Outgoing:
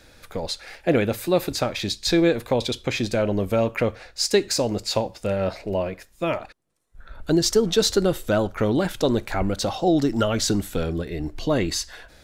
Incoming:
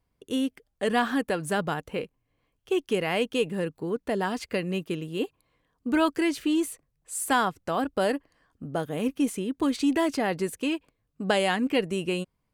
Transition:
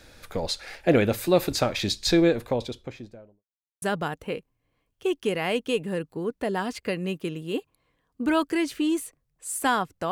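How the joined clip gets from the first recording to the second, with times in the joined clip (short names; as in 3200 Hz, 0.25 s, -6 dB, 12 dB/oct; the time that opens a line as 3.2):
outgoing
1.89–3.44 studio fade out
3.44–3.82 mute
3.82 switch to incoming from 1.48 s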